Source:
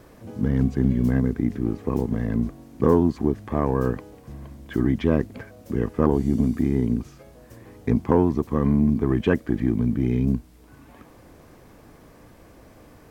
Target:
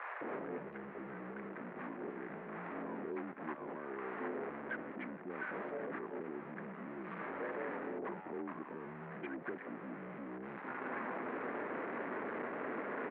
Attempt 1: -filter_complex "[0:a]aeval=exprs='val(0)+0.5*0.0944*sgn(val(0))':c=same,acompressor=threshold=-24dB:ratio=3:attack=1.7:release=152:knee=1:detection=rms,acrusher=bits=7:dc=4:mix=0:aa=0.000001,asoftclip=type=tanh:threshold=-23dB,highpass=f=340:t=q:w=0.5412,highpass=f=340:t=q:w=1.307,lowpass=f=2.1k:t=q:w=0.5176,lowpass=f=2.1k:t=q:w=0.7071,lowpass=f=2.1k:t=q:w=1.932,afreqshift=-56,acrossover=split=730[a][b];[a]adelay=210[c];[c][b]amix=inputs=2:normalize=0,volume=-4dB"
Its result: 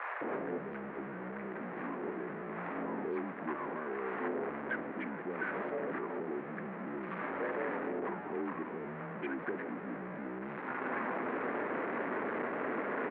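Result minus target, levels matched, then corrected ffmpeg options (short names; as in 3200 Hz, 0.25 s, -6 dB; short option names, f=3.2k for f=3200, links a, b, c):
compressor: peak gain reduction -7 dB
-filter_complex "[0:a]aeval=exprs='val(0)+0.5*0.0944*sgn(val(0))':c=same,acompressor=threshold=-34.5dB:ratio=3:attack=1.7:release=152:knee=1:detection=rms,acrusher=bits=7:dc=4:mix=0:aa=0.000001,asoftclip=type=tanh:threshold=-23dB,highpass=f=340:t=q:w=0.5412,highpass=f=340:t=q:w=1.307,lowpass=f=2.1k:t=q:w=0.5176,lowpass=f=2.1k:t=q:w=0.7071,lowpass=f=2.1k:t=q:w=1.932,afreqshift=-56,acrossover=split=730[a][b];[a]adelay=210[c];[c][b]amix=inputs=2:normalize=0,volume=-4dB"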